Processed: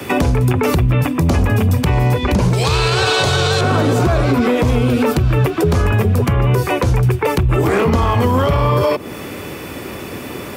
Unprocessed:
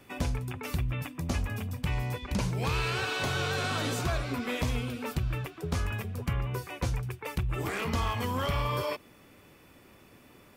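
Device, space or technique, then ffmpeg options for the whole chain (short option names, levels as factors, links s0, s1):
mastering chain: -filter_complex "[0:a]highpass=f=52:w=0.5412,highpass=f=52:w=1.3066,equalizer=f=400:t=o:w=0.83:g=4,acrossover=split=120|280|1300[s0][s1][s2][s3];[s0]acompressor=threshold=0.0224:ratio=4[s4];[s1]acompressor=threshold=0.0178:ratio=4[s5];[s2]acompressor=threshold=0.0224:ratio=4[s6];[s3]acompressor=threshold=0.00355:ratio=4[s7];[s4][s5][s6][s7]amix=inputs=4:normalize=0,acompressor=threshold=0.0126:ratio=2,asoftclip=type=tanh:threshold=0.0422,alimiter=level_in=42.2:limit=0.891:release=50:level=0:latency=1,asettb=1/sr,asplit=3[s8][s9][s10];[s8]atrim=end=2.534[s11];[s9]atrim=start=2.53:end=3.61,asetpts=PTS-STARTPTS,afade=t=in:d=0.004:c=qsin,afade=t=out:st=1.076:d=0.004:c=qsin,equalizer=f=250:t=o:w=1:g=-10,equalizer=f=4000:t=o:w=1:g=11,equalizer=f=8000:t=o:w=1:g=10[s12];[s10]atrim=start=3.606[s13];[s11][s12]acrossfade=d=0.004:c1=hsin:c2=qsin[s14];[s14][s13]acrossfade=d=0.004:c1=qsin:c2=hsin,volume=0.501"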